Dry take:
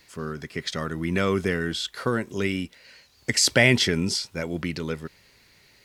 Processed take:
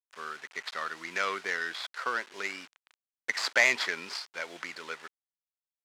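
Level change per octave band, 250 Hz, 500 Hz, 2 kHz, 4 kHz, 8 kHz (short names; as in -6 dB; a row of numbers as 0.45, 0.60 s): -22.5, -12.0, -2.0, -9.0, -12.5 dB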